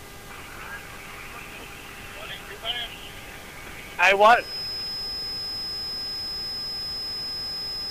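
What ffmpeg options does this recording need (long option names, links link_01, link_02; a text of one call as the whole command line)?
ffmpeg -i in.wav -af "bandreject=frequency=402.2:width_type=h:width=4,bandreject=frequency=804.4:width_type=h:width=4,bandreject=frequency=1206.6:width_type=h:width=4,bandreject=frequency=1608.8:width_type=h:width=4,bandreject=frequency=2011:width_type=h:width=4,bandreject=frequency=5100:width=30,afftdn=noise_reduction=30:noise_floor=-41" out.wav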